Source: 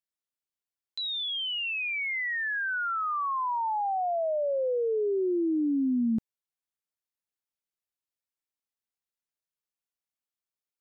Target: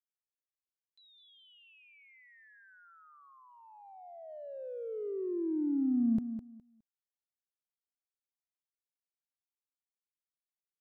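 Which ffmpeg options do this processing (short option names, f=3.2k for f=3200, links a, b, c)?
-filter_complex "[0:a]agate=range=-36dB:threshold=-25dB:ratio=16:detection=peak,asplit=3[a][b][c];[a]afade=t=out:st=4.28:d=0.02[d];[b]highshelf=f=2.7k:g=11,afade=t=in:st=4.28:d=0.02,afade=t=out:st=5.1:d=0.02[e];[c]afade=t=in:st=5.1:d=0.02[f];[d][e][f]amix=inputs=3:normalize=0,aecho=1:1:207|414|621:0.316|0.0632|0.0126,volume=6dB"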